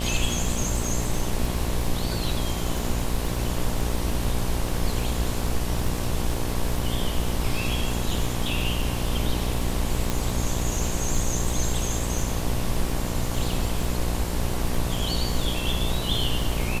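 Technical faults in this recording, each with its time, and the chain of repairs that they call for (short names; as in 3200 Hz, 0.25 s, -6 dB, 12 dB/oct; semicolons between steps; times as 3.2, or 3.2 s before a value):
buzz 60 Hz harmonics 19 -29 dBFS
crackle 33/s -28 dBFS
10.1 pop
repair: de-click; de-hum 60 Hz, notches 19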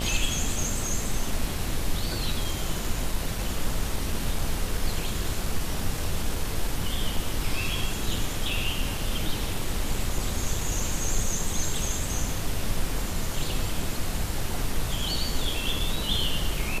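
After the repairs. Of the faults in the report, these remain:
none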